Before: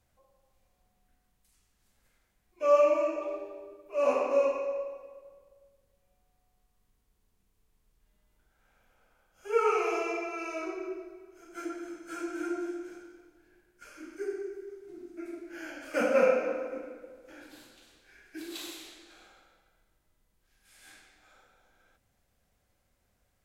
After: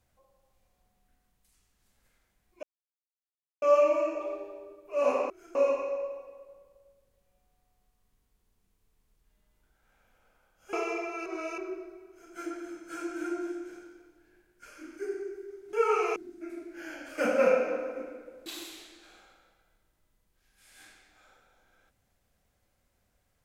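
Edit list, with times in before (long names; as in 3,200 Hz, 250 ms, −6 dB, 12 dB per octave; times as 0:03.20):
0:02.63: splice in silence 0.99 s
0:09.49–0:09.92: move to 0:14.92
0:10.45–0:10.77: reverse
0:11.28–0:11.53: duplicate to 0:04.31
0:17.22–0:18.53: remove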